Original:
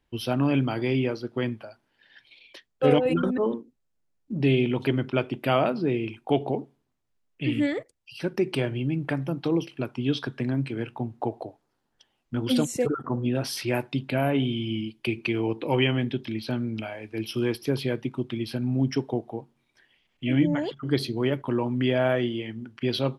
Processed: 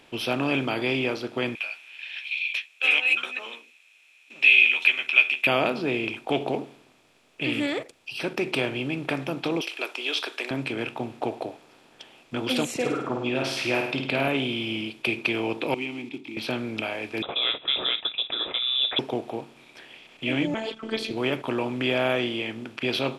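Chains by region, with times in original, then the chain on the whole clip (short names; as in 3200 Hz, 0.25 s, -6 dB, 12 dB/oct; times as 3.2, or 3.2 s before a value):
1.55–5.47 resonant high-pass 2500 Hz, resonance Q 12 + notch 4700 Hz, Q 6.2 + doubler 13 ms -6 dB
9.61–10.51 elliptic high-pass 360 Hz, stop band 80 dB + tilt shelf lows -9 dB, about 1400 Hz
12.74–14.28 LPF 6700 Hz + flutter echo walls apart 8.9 m, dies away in 0.45 s
15.74–16.37 block floating point 5-bit + vowel filter u + bell 900 Hz -12 dB 0.97 oct
17.22–18.99 gate -40 dBFS, range -9 dB + inverted band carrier 3700 Hz
20.54–21.11 LPF 9400 Hz 24 dB/oct + robotiser 222 Hz
whole clip: per-bin compression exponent 0.6; low shelf 240 Hz -9.5 dB; gain -2.5 dB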